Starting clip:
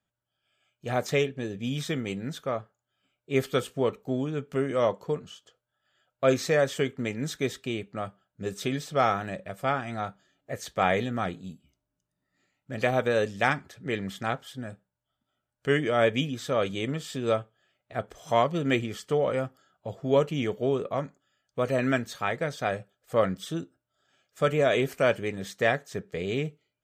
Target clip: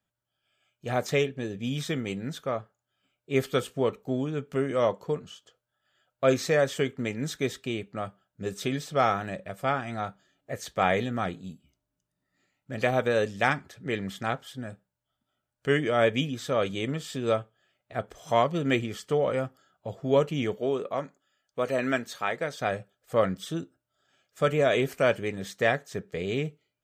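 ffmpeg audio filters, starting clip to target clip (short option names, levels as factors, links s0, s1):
-filter_complex "[0:a]asettb=1/sr,asplit=3[s0][s1][s2];[s0]atrim=end=20.574[s3];[s1]atrim=start=20.57:end=22.61,asetpts=PTS-STARTPTS,afade=t=in:d=0.004:c=qsin,afade=t=out:st=2.036:d=0.004:c=qsin,equalizer=f=83:w=0.67:g=-11.5[s4];[s2]atrim=start=22.606[s5];[s3][s4]acrossfade=d=0.004:c1=hsin:c2=qsin[s6];[s6][s5]acrossfade=d=0.004:c1=qsin:c2=hsin"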